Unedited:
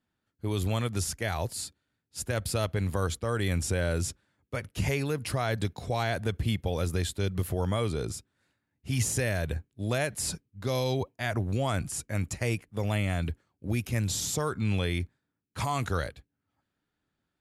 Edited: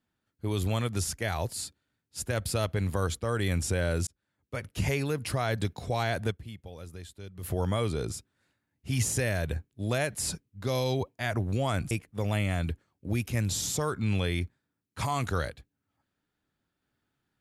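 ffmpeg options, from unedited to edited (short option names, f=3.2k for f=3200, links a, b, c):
-filter_complex "[0:a]asplit=5[a][b][c][d][e];[a]atrim=end=4.07,asetpts=PTS-STARTPTS,afade=t=out:st=4.066:d=0.004:c=hsin[f];[b]atrim=start=4.07:end=6.45,asetpts=PTS-STARTPTS,afade=t=in:d=0.6,afade=t=out:st=2.24:d=0.14:c=exp:silence=0.188365[g];[c]atrim=start=6.45:end=7.3,asetpts=PTS-STARTPTS,volume=-14.5dB[h];[d]atrim=start=7.3:end=11.912,asetpts=PTS-STARTPTS,afade=t=in:d=0.14:c=exp:silence=0.188365[i];[e]atrim=start=12.498[j];[f][g][h][i]concat=n=4:v=0:a=1[k];[k][j]acrossfade=d=0.004:c1=hsin:c2=hsin"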